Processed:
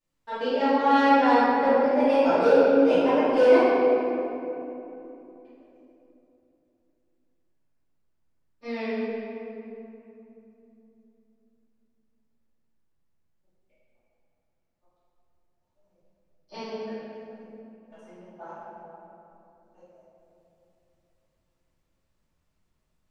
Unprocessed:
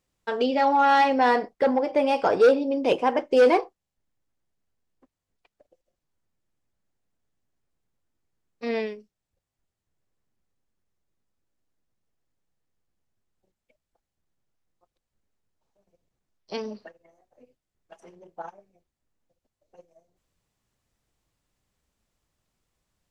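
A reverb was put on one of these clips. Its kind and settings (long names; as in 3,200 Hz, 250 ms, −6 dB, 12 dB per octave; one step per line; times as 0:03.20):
rectangular room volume 140 cubic metres, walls hard, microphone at 2.6 metres
level −15.5 dB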